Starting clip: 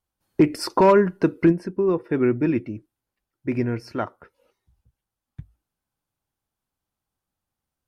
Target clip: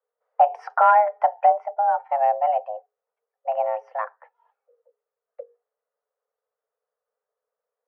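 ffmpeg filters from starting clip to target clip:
ffmpeg -i in.wav -af "lowpass=1000,afreqshift=420" out.wav

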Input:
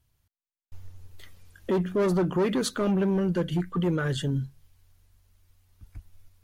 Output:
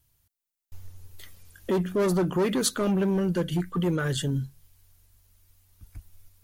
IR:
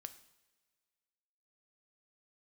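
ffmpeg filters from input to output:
-af "highshelf=frequency=6200:gain=11"

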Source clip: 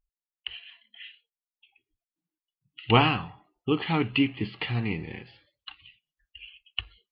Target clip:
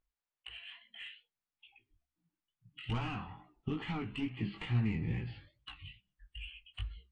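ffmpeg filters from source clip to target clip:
ffmpeg -i in.wav -filter_complex "[0:a]asoftclip=type=tanh:threshold=-17.5dB,alimiter=limit=-21dB:level=0:latency=1:release=208,asettb=1/sr,asplit=3[link_01][link_02][link_03];[link_01]atrim=end=2.804[link_04];[link_02]atrim=start=2.8:end=4.95,asetpts=PTS-STARTPTS,afade=type=in:duration=0.004:curve=qsin,afade=type=out:start_time=2.146:duration=0.004:curve=qsin,equalizer=frequency=99:width=0.76:gain=-10[link_05];[link_03]atrim=start=4.946[link_06];[link_04][link_05]acrossfade=duration=0.004:curve1=hsin:curve2=qsin[link_07];[link_07][link_06]acrossfade=duration=0.004:curve1=qsin:curve2=hsin,acompressor=threshold=-43dB:ratio=2.5,bandreject=frequency=65.09:width_type=h:width=4,bandreject=frequency=130.18:width_type=h:width=4,bandreject=frequency=195.27:width_type=h:width=4,bandreject=frequency=260.36:width_type=h:width=4,bandreject=frequency=325.45:width_type=h:width=4,flanger=delay=16:depth=4.9:speed=2.3,asplit=2[link_08][link_09];[link_09]highpass=frequency=720:poles=1,volume=8dB,asoftclip=type=tanh:threshold=-37dB[link_10];[link_08][link_10]amix=inputs=2:normalize=0,lowpass=frequency=1300:poles=1,volume=-6dB,asubboost=boost=10:cutoff=170,volume=6.5dB" -ar 22050 -c:a aac -b:a 64k out.aac

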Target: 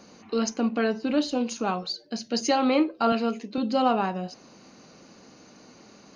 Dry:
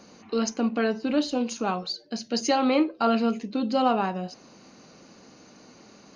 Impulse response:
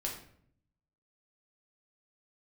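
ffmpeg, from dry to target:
-filter_complex "[0:a]asettb=1/sr,asplit=3[link_01][link_02][link_03];[link_01]atrim=end=3.124[link_04];[link_02]atrim=start=3.12:end=3.58,asetpts=PTS-STARTPTS,afade=type=in:duration=0.004:curve=qsin,afade=type=out:start_time=0.456:duration=0.004:curve=qsin,highpass=240[link_05];[link_03]atrim=start=3.576[link_06];[link_04][link_05]acrossfade=duration=0.004:curve1=hsin:curve2=qsin[link_07];[link_07][link_06]acrossfade=duration=0.004:curve1=qsin:curve2=hsin"

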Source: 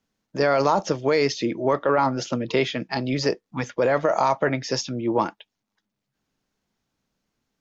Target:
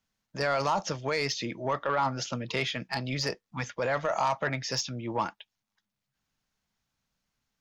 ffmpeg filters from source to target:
ffmpeg -i in.wav -af "equalizer=frequency=350:width=0.81:gain=-11,asoftclip=type=tanh:threshold=-16dB,volume=-1.5dB" out.wav

